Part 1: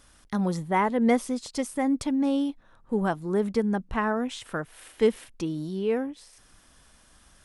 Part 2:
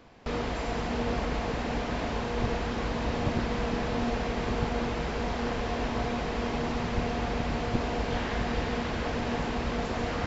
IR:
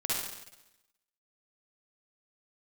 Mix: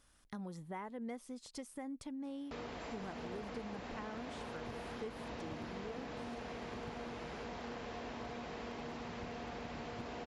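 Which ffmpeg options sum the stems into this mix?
-filter_complex "[0:a]volume=-12dB[a];[1:a]highpass=f=150:p=1,aeval=exprs='0.0794*(abs(mod(val(0)/0.0794+3,4)-2)-1)':c=same,adelay=2250,volume=-6dB[b];[a][b]amix=inputs=2:normalize=0,acompressor=threshold=-44dB:ratio=3"

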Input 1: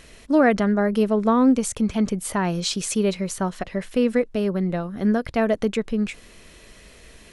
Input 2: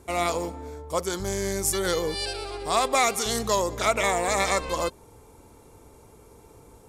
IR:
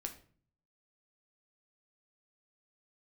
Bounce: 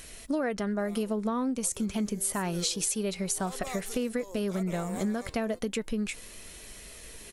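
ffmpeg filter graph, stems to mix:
-filter_complex "[0:a]flanger=delay=1.3:depth=4:regen=81:speed=0.3:shape=sinusoidal,volume=2dB,asplit=2[a][b];[1:a]equalizer=f=370:t=o:w=2.3:g=10,adelay=700,volume=-18.5dB[c];[b]apad=whole_len=334400[d];[c][d]sidechaincompress=threshold=-26dB:ratio=4:attack=5.3:release=738[e];[a][e]amix=inputs=2:normalize=0,aemphasis=mode=production:type=50fm,acompressor=threshold=-27dB:ratio=6"

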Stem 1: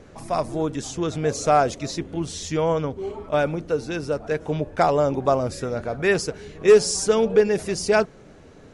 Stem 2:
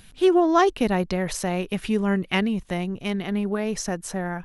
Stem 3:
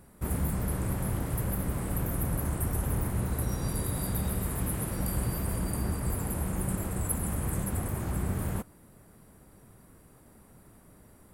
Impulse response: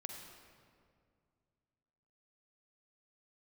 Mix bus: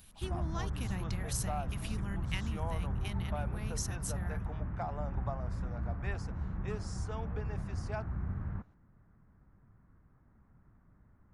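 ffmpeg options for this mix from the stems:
-filter_complex "[0:a]dynaudnorm=f=400:g=3:m=11.5dB,bandpass=f=770:t=q:w=2.6:csg=0,volume=-8.5dB[a];[1:a]acompressor=threshold=-23dB:ratio=2,volume=-10.5dB[b];[2:a]lowpass=f=1.6k:w=0.5412,lowpass=f=1.6k:w=1.3066,volume=-3dB[c];[a][b]amix=inputs=2:normalize=0,highshelf=f=8.3k:g=11.5,acompressor=threshold=-26dB:ratio=3,volume=0dB[d];[c][d]amix=inputs=2:normalize=0,equalizer=f=490:t=o:w=2.2:g=-14.5"

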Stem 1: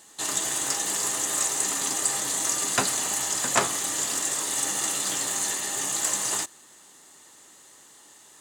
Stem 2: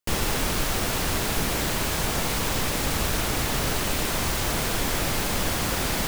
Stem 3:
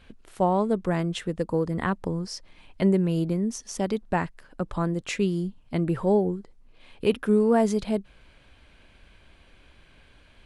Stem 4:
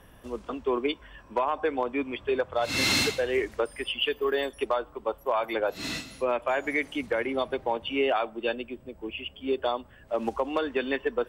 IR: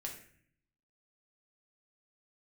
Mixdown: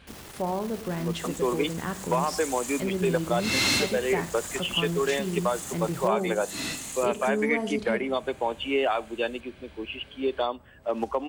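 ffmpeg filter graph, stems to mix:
-filter_complex "[0:a]highshelf=f=8.3k:g=11,adelay=1000,volume=-14.5dB[a];[1:a]alimiter=limit=-23dB:level=0:latency=1,aeval=exprs='(tanh(50.1*val(0)+0.55)-tanh(0.55))/50.1':c=same,volume=-6dB[b];[2:a]acompressor=threshold=-46dB:ratio=1.5,volume=1dB,asplit=3[c][d][e];[d]volume=-3dB[f];[3:a]adelay=750,volume=0.5dB[g];[e]apad=whole_len=414682[h];[a][h]sidechaincompress=threshold=-39dB:ratio=8:attack=16:release=307[i];[i][c]amix=inputs=2:normalize=0,alimiter=level_in=1.5dB:limit=-24dB:level=0:latency=1:release=29,volume=-1.5dB,volume=0dB[j];[4:a]atrim=start_sample=2205[k];[f][k]afir=irnorm=-1:irlink=0[l];[b][g][j][l]amix=inputs=4:normalize=0,highpass=51"

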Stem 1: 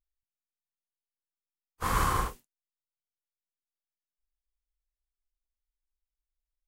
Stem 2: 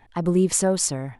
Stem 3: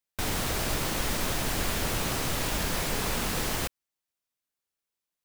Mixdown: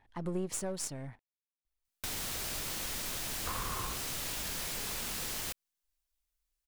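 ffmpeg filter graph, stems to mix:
-filter_complex "[0:a]acompressor=threshold=-30dB:ratio=6,adelay=1650,volume=1dB[a];[1:a]aeval=exprs='if(lt(val(0),0),0.447*val(0),val(0))':c=same,dynaudnorm=f=180:g=3:m=8.5dB,volume=-10.5dB[b];[2:a]highshelf=f=2.1k:g=10.5,adelay=1850,volume=-10dB[c];[a][b][c]amix=inputs=3:normalize=0,acompressor=threshold=-36dB:ratio=2.5"

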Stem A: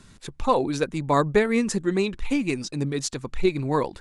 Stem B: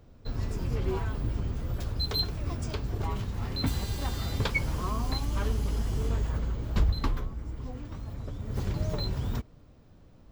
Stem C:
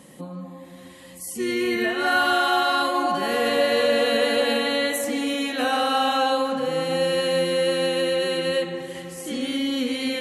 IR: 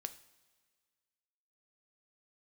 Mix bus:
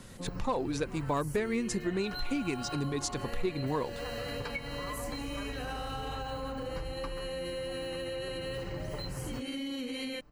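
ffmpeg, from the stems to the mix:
-filter_complex "[0:a]asoftclip=type=tanh:threshold=-10.5dB,volume=-0.5dB[a];[1:a]equalizer=f=1.4k:t=o:w=2.4:g=6.5,aecho=1:1:6.8:0.64,volume=-7dB[b];[2:a]alimiter=limit=-19.5dB:level=0:latency=1,volume=-6.5dB[c];[b][c]amix=inputs=2:normalize=0,asuperstop=centerf=3500:order=12:qfactor=7.2,acompressor=threshold=-33dB:ratio=6,volume=0dB[d];[a][d]amix=inputs=2:normalize=0,acompressor=threshold=-32dB:ratio=2.5"

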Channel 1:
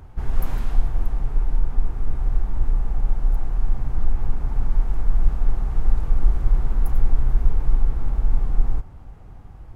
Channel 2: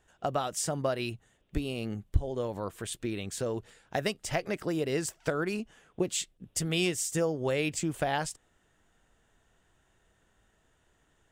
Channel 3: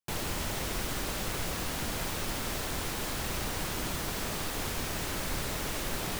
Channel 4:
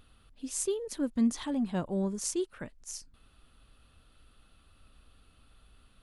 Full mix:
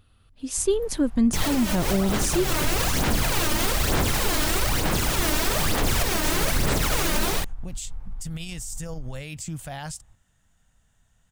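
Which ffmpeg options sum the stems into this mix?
-filter_complex "[0:a]adelay=400,volume=-14.5dB[a];[1:a]bass=f=250:g=9,treble=f=4k:g=8,adelay=1650,volume=-2.5dB[b];[2:a]aphaser=in_gain=1:out_gain=1:delay=3.3:decay=0.55:speed=1.1:type=sinusoidal,adelay=1250,volume=2.5dB[c];[3:a]equalizer=f=95:t=o:w=0.77:g=9,volume=-2dB,asplit=2[d][e];[e]apad=whole_len=328236[f];[c][f]sidechaincompress=threshold=-38dB:ratio=8:attack=10:release=320[g];[g][d]amix=inputs=2:normalize=0,dynaudnorm=f=300:g=3:m=12dB,alimiter=limit=-13.5dB:level=0:latency=1:release=69,volume=0dB[h];[a][b]amix=inputs=2:normalize=0,equalizer=f=370:w=2.1:g=-13.5,alimiter=level_in=1dB:limit=-24dB:level=0:latency=1:release=43,volume=-1dB,volume=0dB[i];[h][i]amix=inputs=2:normalize=0"

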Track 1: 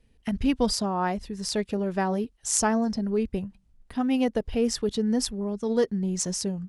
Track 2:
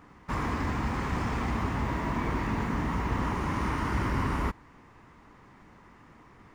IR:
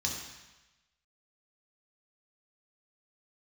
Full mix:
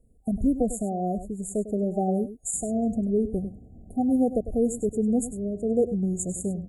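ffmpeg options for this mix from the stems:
-filter_complex "[0:a]alimiter=limit=-14.5dB:level=0:latency=1:release=362,volume=1.5dB,asplit=3[a][b][c];[b]volume=-13dB[d];[1:a]afwtdn=0.0224,acompressor=threshold=-38dB:ratio=3,adelay=2250,volume=-13dB,asplit=2[e][f];[f]volume=-7.5dB[g];[c]apad=whole_len=387988[h];[e][h]sidechaingate=range=-33dB:threshold=-55dB:ratio=16:detection=peak[i];[2:a]atrim=start_sample=2205[j];[g][j]afir=irnorm=-1:irlink=0[k];[d]aecho=0:1:100:1[l];[a][i][k][l]amix=inputs=4:normalize=0,afftfilt=real='re*(1-between(b*sr/4096,780,6700))':imag='im*(1-between(b*sr/4096,780,6700))':win_size=4096:overlap=0.75"

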